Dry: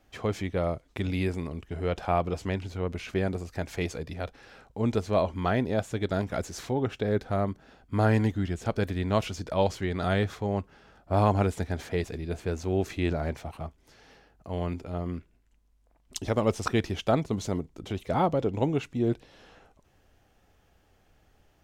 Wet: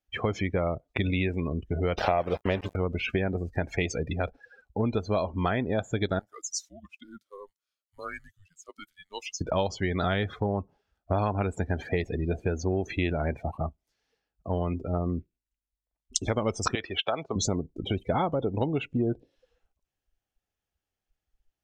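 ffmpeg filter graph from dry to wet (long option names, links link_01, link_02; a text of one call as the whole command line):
ffmpeg -i in.wav -filter_complex "[0:a]asettb=1/sr,asplit=3[link_01][link_02][link_03];[link_01]atrim=end=1.984[link_04];[link_02]atrim=start=1.98:end=2.76,asetpts=PTS-STARTPTS,afade=type=in:duration=0.004:curve=qsin,afade=type=out:start_time=0.776:duration=0.004:curve=qsin,equalizer=frequency=580:width=1.8:gain=9.5,acontrast=37,aeval=exprs='val(0)*gte(abs(val(0)),0.0335)':channel_layout=same[link_05];[link_03]atrim=start=2.756[link_06];[link_04][link_05]acrossfade=duration=0.004:curve1=hsin:curve2=qsin[link_07];[link_07][link_06]acrossfade=duration=0.004:curve1=qsin:curve2=hsin,asettb=1/sr,asplit=3[link_08][link_09][link_10];[link_08]atrim=end=6.194[link_11];[link_09]atrim=start=6.19:end=9.41,asetpts=PTS-STARTPTS,afade=type=in:duration=0.004:curve=qsin,afade=type=out:start_time=3.216:duration=0.004:curve=qsin,aderivative,afreqshift=-190[link_12];[link_10]atrim=start=9.406[link_13];[link_11][link_12]acrossfade=duration=0.004:curve1=hsin:curve2=qsin[link_14];[link_14][link_13]acrossfade=duration=0.004:curve1=qsin:curve2=hsin,asettb=1/sr,asplit=3[link_15][link_16][link_17];[link_15]atrim=end=16.754[link_18];[link_16]atrim=start=16.75:end=17.36,asetpts=PTS-STARTPTS,afade=type=in:duration=0.004:curve=qsin,afade=type=out:start_time=0.606:duration=0.004:curve=qsin,acrossover=split=450 5700:gain=0.178 1 0.0794[link_19][link_20][link_21];[link_19][link_20][link_21]amix=inputs=3:normalize=0,acompressor=threshold=-31dB:ratio=2:attack=3.2:release=140:knee=1:detection=peak[link_22];[link_17]atrim=start=17.356[link_23];[link_18][link_22]acrossfade=duration=0.004:curve1=hsin:curve2=qsin[link_24];[link_24][link_23]acrossfade=duration=0.004:curve1=qsin:curve2=hsin,afftdn=noise_reduction=34:noise_floor=-40,highshelf=frequency=2100:gain=10,acompressor=threshold=-31dB:ratio=6,volume=7dB" out.wav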